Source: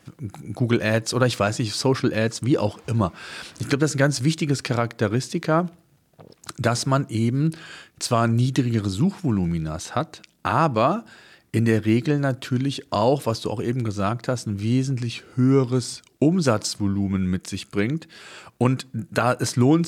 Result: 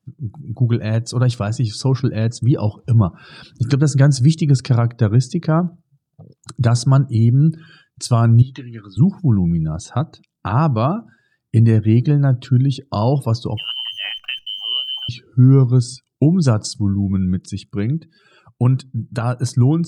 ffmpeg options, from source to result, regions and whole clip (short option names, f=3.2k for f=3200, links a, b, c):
-filter_complex "[0:a]asettb=1/sr,asplit=3[a][b][c];[a]atrim=end=8.424[d];[b]atrim=start=8.42:end=8.97,asetpts=PTS-STARTPTS,afade=t=in:d=0.004:c=qsin,afade=t=out:st=0.546:d=0.004:c=qsin,bandpass=f=1.8k:t=q:w=0.95,asplit=2[e][f];[f]adelay=17,volume=-10dB[g];[e][g]amix=inputs=2:normalize=0,atrim=end_sample=24255[h];[c]atrim=start=8.966[i];[d][h]acrossfade=d=0.004:c1=hsin:c2=qsin[j];[j][i]acrossfade=d=0.004:c1=qsin:c2=hsin,asettb=1/sr,asplit=3[k][l][m];[k]atrim=end=13.574[n];[l]atrim=start=13.57:end=15.09,asetpts=PTS-STARTPTS,afade=t=in:d=0.004:c=qsin,afade=t=out:st=1.516:d=0.004:c=qsin,lowpass=f=2.7k:t=q:w=0.5098,lowpass=f=2.7k:t=q:w=0.6013,lowpass=f=2.7k:t=q:w=0.9,lowpass=f=2.7k:t=q:w=2.563,afreqshift=-3200,highpass=f=190:p=1,acrusher=bits=7:dc=4:mix=0:aa=0.000001[o];[m]atrim=start=15.086[p];[n][o]acrossfade=d=0.004:c1=hsin:c2=qsin[q];[q][p]acrossfade=d=0.004:c1=qsin:c2=hsin,afftdn=nr=21:nf=-40,equalizer=f=125:t=o:w=1:g=10,equalizer=f=500:t=o:w=1:g=-4,equalizer=f=2k:t=o:w=1:g=-9,dynaudnorm=f=270:g=17:m=11.5dB,volume=-1.5dB"